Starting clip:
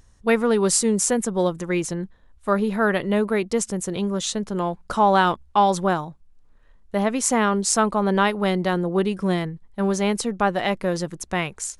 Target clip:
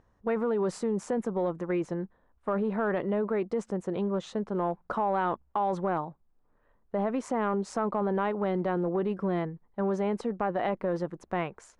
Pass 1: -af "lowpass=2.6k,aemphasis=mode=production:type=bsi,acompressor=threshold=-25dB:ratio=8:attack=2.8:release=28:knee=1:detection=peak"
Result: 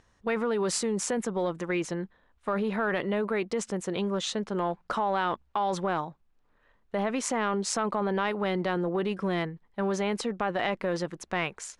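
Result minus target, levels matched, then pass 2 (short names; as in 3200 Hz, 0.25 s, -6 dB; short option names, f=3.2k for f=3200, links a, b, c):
2000 Hz band +6.0 dB
-af "lowpass=1.1k,aemphasis=mode=production:type=bsi,acompressor=threshold=-25dB:ratio=8:attack=2.8:release=28:knee=1:detection=peak"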